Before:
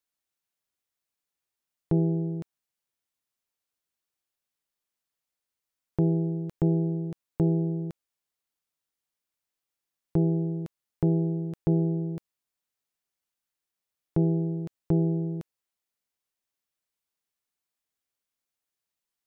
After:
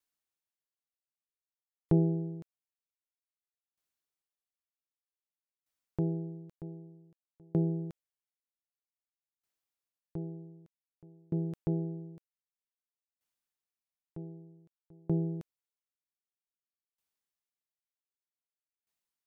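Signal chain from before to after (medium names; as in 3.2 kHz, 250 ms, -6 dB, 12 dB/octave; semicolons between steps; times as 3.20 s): sawtooth tremolo in dB decaying 0.53 Hz, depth 37 dB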